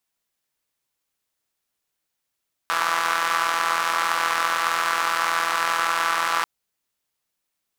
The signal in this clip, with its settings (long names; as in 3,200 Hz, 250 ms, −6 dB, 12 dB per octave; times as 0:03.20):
pulse-train model of a four-cylinder engine, steady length 3.74 s, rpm 5,000, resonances 1,200 Hz